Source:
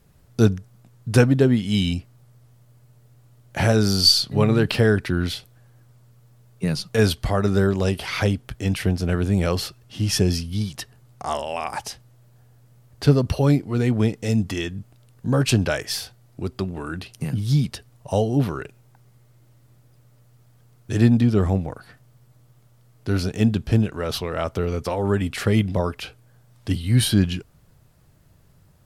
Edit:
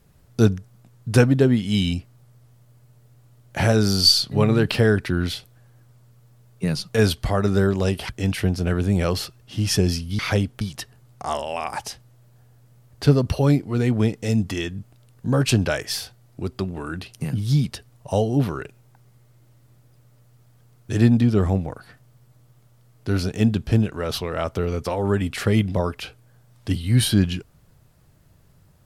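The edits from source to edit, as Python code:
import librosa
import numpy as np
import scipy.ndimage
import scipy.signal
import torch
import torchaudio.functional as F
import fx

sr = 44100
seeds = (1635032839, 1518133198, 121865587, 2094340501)

y = fx.edit(x, sr, fx.move(start_s=8.09, length_s=0.42, to_s=10.61), tone=tone)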